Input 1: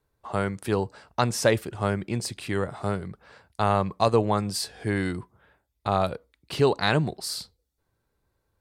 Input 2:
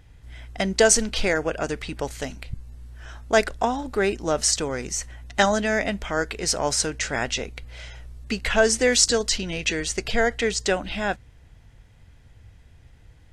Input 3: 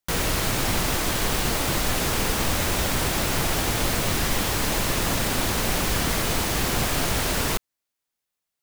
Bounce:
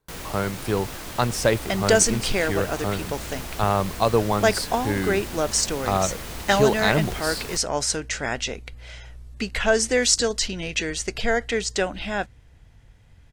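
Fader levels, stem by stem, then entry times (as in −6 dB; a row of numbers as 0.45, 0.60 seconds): +1.0, −1.0, −11.5 decibels; 0.00, 1.10, 0.00 seconds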